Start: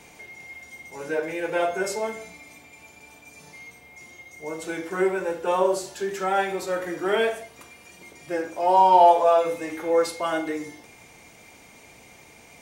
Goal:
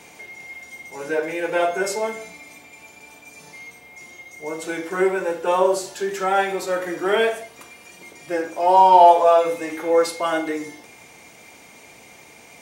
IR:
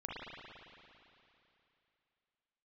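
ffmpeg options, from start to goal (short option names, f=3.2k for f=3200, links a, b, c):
-af "lowshelf=f=100:g=-11.5,volume=4dB"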